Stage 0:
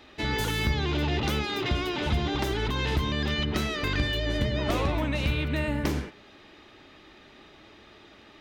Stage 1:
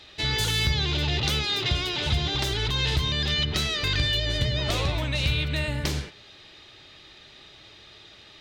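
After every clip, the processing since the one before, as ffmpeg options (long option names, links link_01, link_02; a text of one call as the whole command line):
ffmpeg -i in.wav -af "equalizer=frequency=125:width_type=o:width=1:gain=6,equalizer=frequency=250:width_type=o:width=1:gain=-9,equalizer=frequency=1000:width_type=o:width=1:gain=-3,equalizer=frequency=4000:width_type=o:width=1:gain=9,equalizer=frequency=8000:width_type=o:width=1:gain=6" out.wav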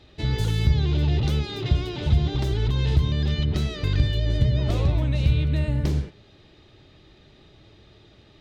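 ffmpeg -i in.wav -af "tiltshelf=frequency=680:gain=9,volume=-2dB" out.wav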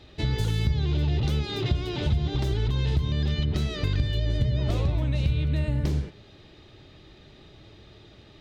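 ffmpeg -i in.wav -af "acompressor=threshold=-25dB:ratio=2.5,volume=2dB" out.wav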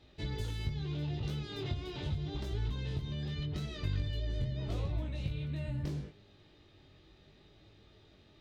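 ffmpeg -i in.wav -af "flanger=delay=19.5:depth=2.1:speed=0.79,volume=-7.5dB" out.wav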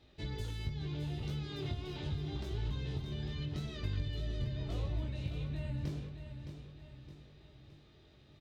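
ffmpeg -i in.wav -af "aecho=1:1:616|1232|1848|2464|3080:0.355|0.167|0.0784|0.0368|0.0173,volume=-2.5dB" out.wav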